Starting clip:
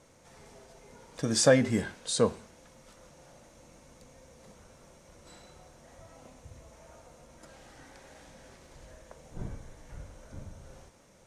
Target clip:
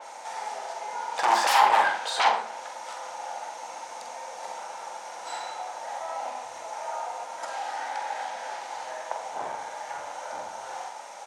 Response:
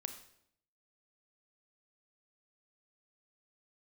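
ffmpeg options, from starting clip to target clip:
-filter_complex "[0:a]lowpass=9.3k,bandreject=f=1.1k:w=7,acrossover=split=2400[a][b];[b]acompressor=threshold=-48dB:ratio=6[c];[a][c]amix=inputs=2:normalize=0,aeval=exprs='0.112*sin(PI/2*5.01*val(0)/0.112)':c=same,highpass=f=840:t=q:w=4.9,asplit=2[d][e];[e]adelay=46,volume=-8dB[f];[d][f]amix=inputs=2:normalize=0[g];[1:a]atrim=start_sample=2205,atrim=end_sample=6174[h];[g][h]afir=irnorm=-1:irlink=0,adynamicequalizer=threshold=0.00562:dfrequency=4600:dqfactor=0.7:tfrequency=4600:tqfactor=0.7:attack=5:release=100:ratio=0.375:range=3:mode=cutabove:tftype=highshelf"

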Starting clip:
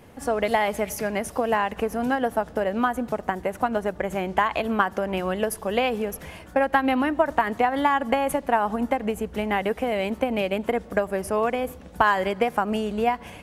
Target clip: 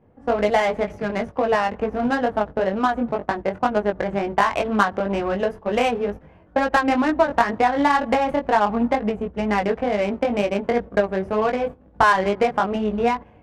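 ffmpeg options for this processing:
-af "flanger=delay=19:depth=2.5:speed=2.1,agate=range=-10dB:threshold=-35dB:ratio=16:detection=peak,adynamicsmooth=sensitivity=3:basefreq=1.2k,volume=6.5dB"

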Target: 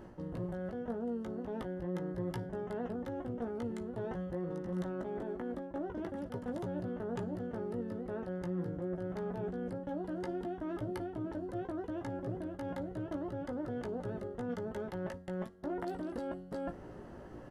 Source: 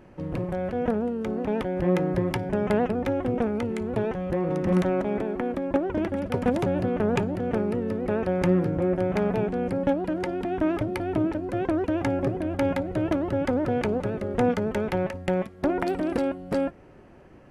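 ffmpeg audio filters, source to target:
-filter_complex "[0:a]equalizer=f=2.4k:w=4.6:g=-14.5,areverse,acompressor=threshold=-39dB:ratio=6,areverse,asplit=2[a][b];[b]adelay=17,volume=-6dB[c];[a][c]amix=inputs=2:normalize=0,volume=1dB"

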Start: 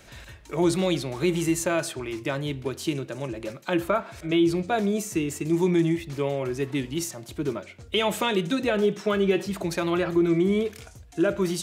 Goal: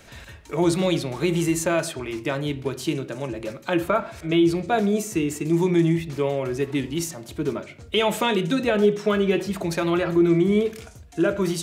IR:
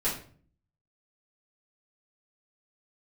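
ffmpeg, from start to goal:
-filter_complex "[0:a]asplit=2[a][b];[1:a]atrim=start_sample=2205,lowpass=3.8k[c];[b][c]afir=irnorm=-1:irlink=0,volume=-19dB[d];[a][d]amix=inputs=2:normalize=0,volume=1.5dB"

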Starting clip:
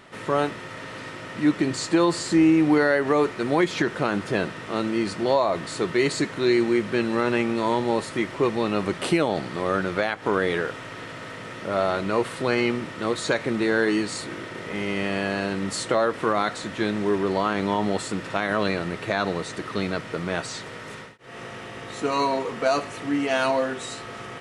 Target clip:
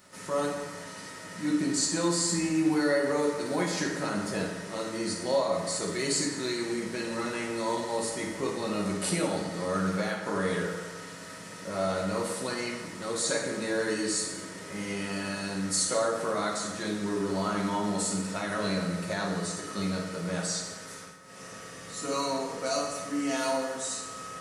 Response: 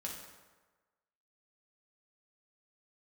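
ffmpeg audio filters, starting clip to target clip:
-filter_complex "[0:a]aexciter=amount=5.9:drive=2.9:freq=4.5k[a];[1:a]atrim=start_sample=2205[b];[a][b]afir=irnorm=-1:irlink=0,volume=-6.5dB"

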